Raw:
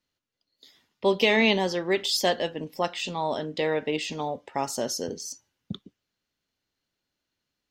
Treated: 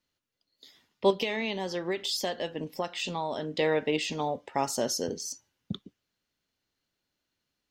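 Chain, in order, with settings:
0:01.10–0:03.51: downward compressor 6 to 1, threshold −28 dBFS, peak gain reduction 11.5 dB

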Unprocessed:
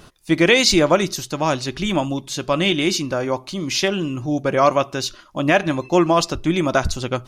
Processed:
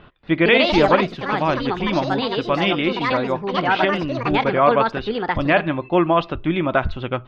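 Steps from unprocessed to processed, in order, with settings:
drawn EQ curve 360 Hz 0 dB, 3,400 Hz +6 dB, 4,900 Hz −7 dB, 13,000 Hz −20 dB
delay with pitch and tempo change per echo 233 ms, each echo +5 semitones, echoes 2
high-frequency loss of the air 360 metres
level −1 dB

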